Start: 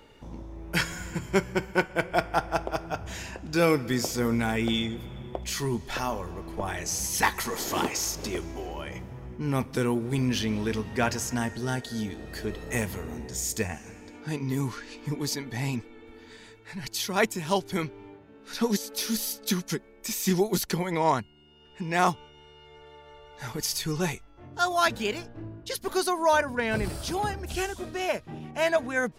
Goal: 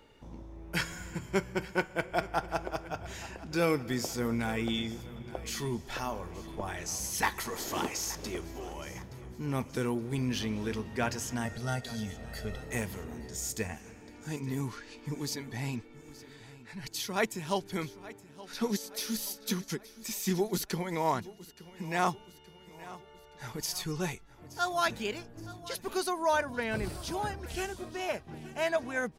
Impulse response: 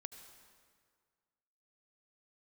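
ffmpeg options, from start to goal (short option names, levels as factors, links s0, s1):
-filter_complex "[0:a]asettb=1/sr,asplit=3[s0][s1][s2];[s0]atrim=end=11.454[s3];[s1]atrim=start=11.45:end=12.6,asetpts=PTS-STARTPTS,afade=t=in:d=0.004:c=qsin,afade=t=out:st=1.146:d=0.004:c=qsin,aecho=1:1:1.5:0.79,atrim=end_sample=50715[s4];[s2]atrim=start=12.596[s5];[s3][s4]acrossfade=d=0.004:c1=hsin:c2=qsin[s6];[s6][s5]acrossfade=d=0.004:c1=qsin:c2=hsin,aecho=1:1:872|1744|2616|3488:0.126|0.0604|0.029|0.0139,volume=0.531"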